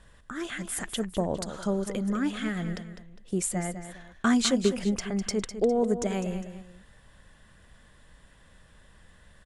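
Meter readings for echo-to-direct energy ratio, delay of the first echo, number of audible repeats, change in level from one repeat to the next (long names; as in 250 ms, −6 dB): −10.0 dB, 203 ms, 2, −9.0 dB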